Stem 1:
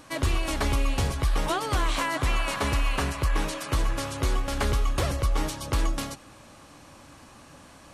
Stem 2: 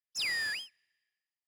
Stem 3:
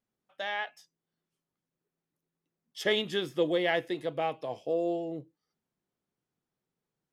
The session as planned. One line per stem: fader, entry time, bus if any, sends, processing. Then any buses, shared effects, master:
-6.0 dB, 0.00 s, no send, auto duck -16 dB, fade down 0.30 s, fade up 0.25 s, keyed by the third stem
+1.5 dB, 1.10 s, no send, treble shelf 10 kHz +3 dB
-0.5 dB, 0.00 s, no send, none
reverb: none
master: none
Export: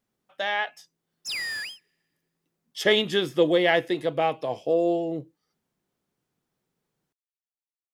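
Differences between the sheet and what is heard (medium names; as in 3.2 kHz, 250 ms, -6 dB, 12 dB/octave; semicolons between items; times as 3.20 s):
stem 1: muted; stem 3 -0.5 dB -> +7.0 dB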